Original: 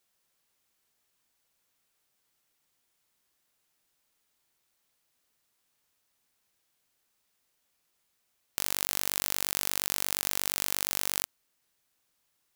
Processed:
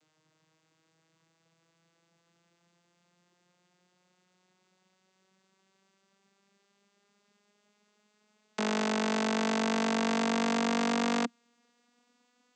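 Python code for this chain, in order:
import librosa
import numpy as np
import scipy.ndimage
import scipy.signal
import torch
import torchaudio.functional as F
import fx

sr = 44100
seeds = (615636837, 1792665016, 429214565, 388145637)

y = fx.vocoder_glide(x, sr, note=51, semitones=8)
y = y * 10.0 ** (8.0 / 20.0)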